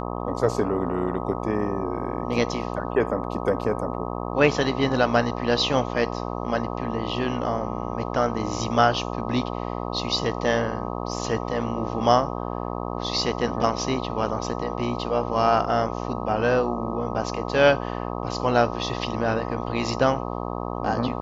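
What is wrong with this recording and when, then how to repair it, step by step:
mains buzz 60 Hz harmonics 21 −30 dBFS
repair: hum removal 60 Hz, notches 21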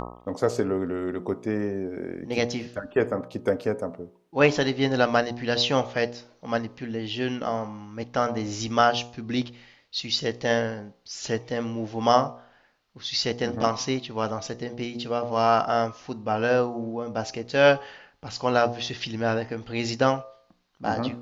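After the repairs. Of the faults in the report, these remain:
none of them is left

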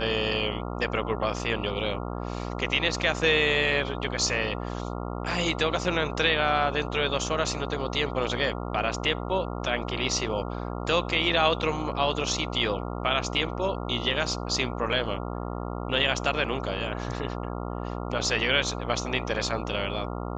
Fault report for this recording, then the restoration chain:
mains buzz 60 Hz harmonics 23 −33 dBFS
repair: hum removal 60 Hz, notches 23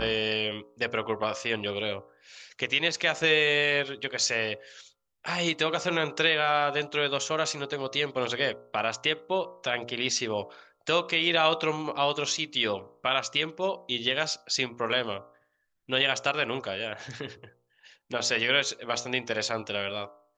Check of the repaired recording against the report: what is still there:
none of them is left

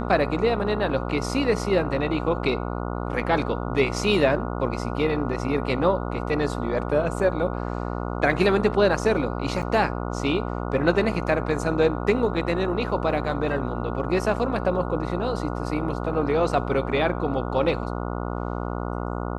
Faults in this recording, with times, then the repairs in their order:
mains buzz 60 Hz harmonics 24 −29 dBFS
0:09.62–0:09.63: drop-out 6.5 ms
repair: hum removal 60 Hz, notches 24
repair the gap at 0:09.62, 6.5 ms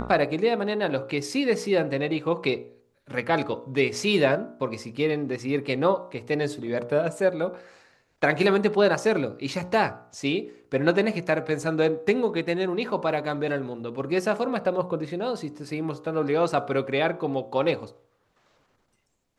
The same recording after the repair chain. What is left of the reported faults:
none of them is left

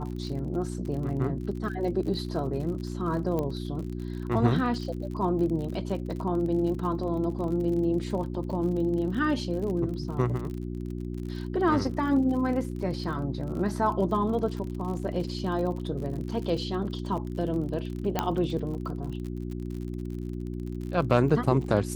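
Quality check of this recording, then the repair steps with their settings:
surface crackle 47 per second −35 dBFS
mains hum 60 Hz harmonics 6 −34 dBFS
0:03.39: click −18 dBFS
0:18.19: click −10 dBFS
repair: click removal
hum removal 60 Hz, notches 6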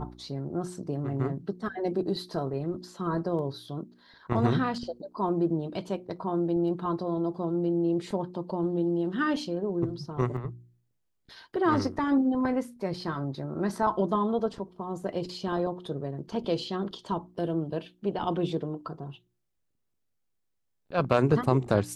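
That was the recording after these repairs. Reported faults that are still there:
0:03.39: click

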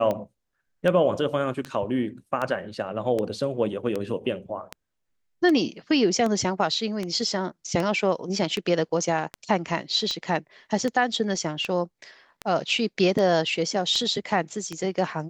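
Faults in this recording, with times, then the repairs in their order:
scratch tick 78 rpm −15 dBFS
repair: click removal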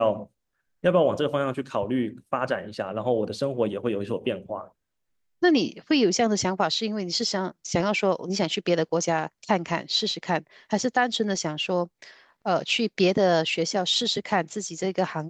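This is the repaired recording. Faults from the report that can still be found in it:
none of them is left

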